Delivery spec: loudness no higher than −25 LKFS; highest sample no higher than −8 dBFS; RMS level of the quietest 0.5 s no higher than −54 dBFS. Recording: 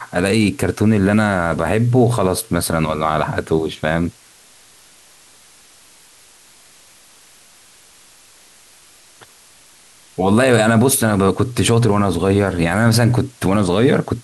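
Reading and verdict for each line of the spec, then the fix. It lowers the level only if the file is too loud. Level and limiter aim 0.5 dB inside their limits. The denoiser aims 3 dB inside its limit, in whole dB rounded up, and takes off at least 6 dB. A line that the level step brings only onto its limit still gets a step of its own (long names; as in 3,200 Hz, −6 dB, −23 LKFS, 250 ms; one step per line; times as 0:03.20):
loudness −16.5 LKFS: out of spec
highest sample −4.0 dBFS: out of spec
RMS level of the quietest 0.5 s −48 dBFS: out of spec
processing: level −9 dB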